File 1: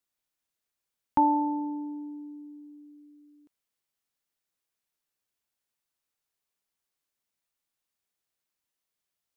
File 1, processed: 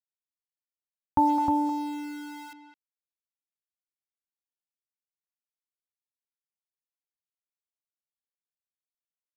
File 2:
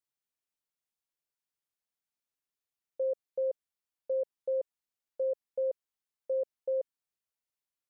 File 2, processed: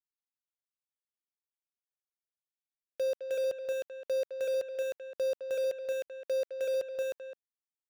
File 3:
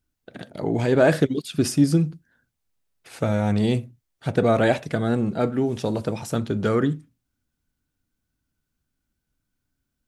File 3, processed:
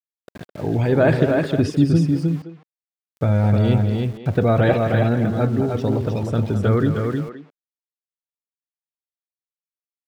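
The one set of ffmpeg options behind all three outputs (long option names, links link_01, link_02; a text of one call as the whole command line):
ffmpeg -i in.wav -filter_complex "[0:a]afftdn=noise_reduction=15:noise_floor=-41,equalizer=frequency=84:width=1.4:gain=12.5,asplit=2[link_01][link_02];[link_02]aecho=0:1:310:0.631[link_03];[link_01][link_03]amix=inputs=2:normalize=0,aeval=exprs='val(0)*gte(abs(val(0)),0.015)':channel_layout=same,acrossover=split=5000[link_04][link_05];[link_05]acompressor=threshold=-50dB:ratio=4:attack=1:release=60[link_06];[link_04][link_06]amix=inputs=2:normalize=0,asplit=2[link_07][link_08];[link_08]adelay=210,highpass=300,lowpass=3400,asoftclip=type=hard:threshold=-13dB,volume=-9dB[link_09];[link_07][link_09]amix=inputs=2:normalize=0" out.wav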